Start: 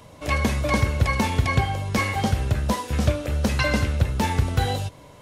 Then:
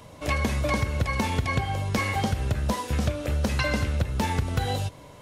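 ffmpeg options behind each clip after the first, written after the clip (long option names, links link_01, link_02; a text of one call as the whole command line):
ffmpeg -i in.wav -af "acompressor=threshold=-21dB:ratio=6" out.wav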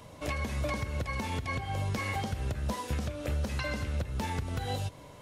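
ffmpeg -i in.wav -af "alimiter=limit=-20dB:level=0:latency=1:release=242,volume=-3dB" out.wav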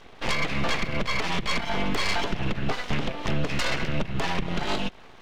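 ffmpeg -i in.wav -af "lowpass=frequency=2900:width_type=q:width=1.9,aeval=exprs='abs(val(0))':channel_layout=same,aeval=exprs='0.126*(cos(1*acos(clip(val(0)/0.126,-1,1)))-cos(1*PI/2))+0.0501*(cos(6*acos(clip(val(0)/0.126,-1,1)))-cos(6*PI/2))':channel_layout=same" out.wav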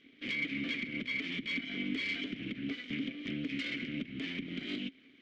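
ffmpeg -i in.wav -filter_complex "[0:a]asplit=3[link_01][link_02][link_03];[link_01]bandpass=frequency=270:width_type=q:width=8,volume=0dB[link_04];[link_02]bandpass=frequency=2290:width_type=q:width=8,volume=-6dB[link_05];[link_03]bandpass=frequency=3010:width_type=q:width=8,volume=-9dB[link_06];[link_04][link_05][link_06]amix=inputs=3:normalize=0,volume=3dB" out.wav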